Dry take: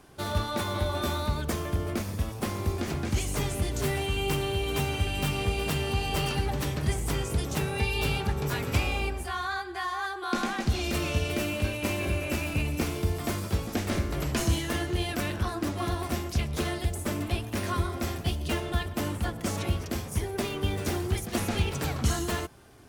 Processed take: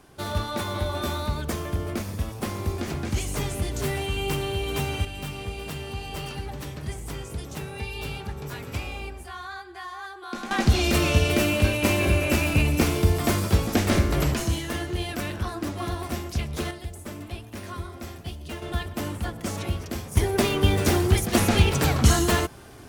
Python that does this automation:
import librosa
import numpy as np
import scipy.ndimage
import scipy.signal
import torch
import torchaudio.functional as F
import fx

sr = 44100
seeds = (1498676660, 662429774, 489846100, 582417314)

y = fx.gain(x, sr, db=fx.steps((0.0, 1.0), (5.05, -5.5), (10.51, 7.5), (14.34, 0.0), (16.71, -6.5), (18.62, 0.0), (20.17, 8.5)))